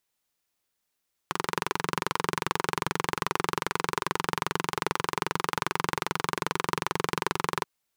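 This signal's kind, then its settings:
pulse-train model of a single-cylinder engine, steady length 6.33 s, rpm 2,700, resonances 170/390/980 Hz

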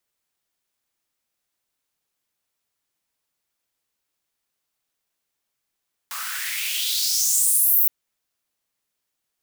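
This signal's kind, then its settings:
filter sweep on noise white, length 1.77 s highpass, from 1,100 Hz, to 16,000 Hz, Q 3.8, exponential, gain ramp +13.5 dB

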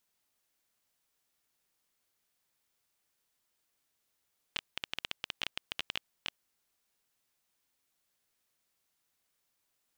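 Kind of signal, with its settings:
Geiger counter clicks 13 per second −16 dBFS 1.88 s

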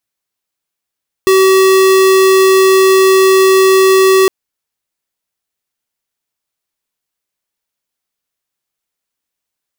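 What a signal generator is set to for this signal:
tone square 381 Hz −7.5 dBFS 3.01 s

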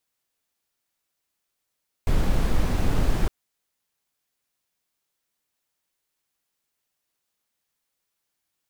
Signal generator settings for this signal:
noise brown, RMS −19.5 dBFS 1.21 s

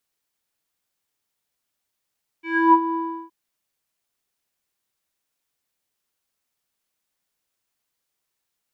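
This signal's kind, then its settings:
subtractive voice square E4 12 dB per octave, low-pass 880 Hz, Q 7.7, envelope 1.5 octaves, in 0.34 s, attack 282 ms, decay 0.09 s, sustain −10 dB, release 0.35 s, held 0.52 s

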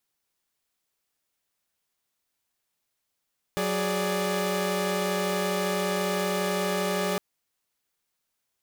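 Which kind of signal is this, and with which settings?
held notes F#3/G#4/D5 saw, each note −27 dBFS 3.61 s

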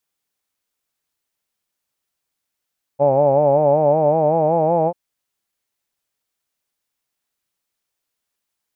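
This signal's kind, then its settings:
vowel by formant synthesis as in hawed, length 1.94 s, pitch 137 Hz, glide +3.5 semitones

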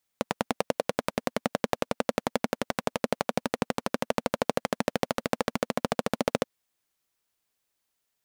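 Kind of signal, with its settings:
pulse-train model of a single-cylinder engine, changing speed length 6.23 s, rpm 1,200, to 1,700, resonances 240/500 Hz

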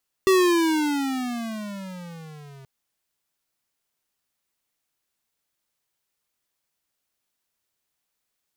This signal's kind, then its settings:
pitch glide with a swell square, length 2.38 s, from 386 Hz, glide −18.5 semitones, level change −29 dB, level −16 dB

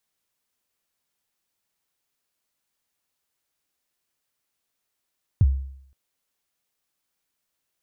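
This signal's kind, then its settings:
synth kick length 0.52 s, from 130 Hz, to 67 Hz, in 38 ms, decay 0.67 s, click off, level −10.5 dB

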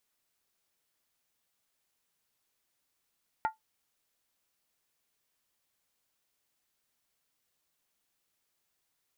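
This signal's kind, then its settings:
struck skin, lowest mode 879 Hz, decay 0.14 s, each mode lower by 7.5 dB, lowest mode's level −22 dB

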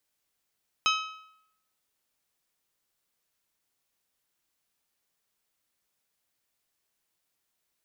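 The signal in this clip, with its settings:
struck metal bell, lowest mode 1,280 Hz, modes 6, decay 0.77 s, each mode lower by 2 dB, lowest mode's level −22.5 dB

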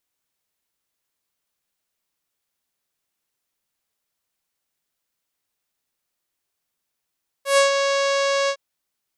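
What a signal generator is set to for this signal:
subtractive voice saw C#5 24 dB per octave, low-pass 6,500 Hz, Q 1.4, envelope 1 octave, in 0.25 s, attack 125 ms, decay 0.13 s, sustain −6.5 dB, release 0.07 s, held 1.04 s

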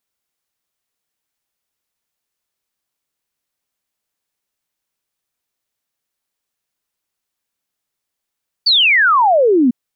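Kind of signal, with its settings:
exponential sine sweep 4,700 Hz → 230 Hz 1.05 s −8.5 dBFS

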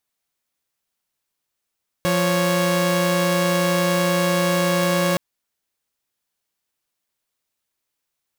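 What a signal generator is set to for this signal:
held notes F3/C#5 saw, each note −17.5 dBFS 3.12 s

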